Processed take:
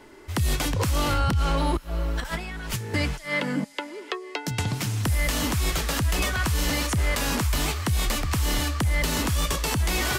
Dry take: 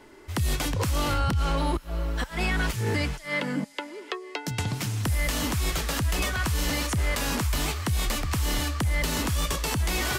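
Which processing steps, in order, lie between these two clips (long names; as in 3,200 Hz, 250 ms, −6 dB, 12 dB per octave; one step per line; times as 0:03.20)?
0:02.20–0:02.94: compressor whose output falls as the input rises −34 dBFS, ratio −1
level +2 dB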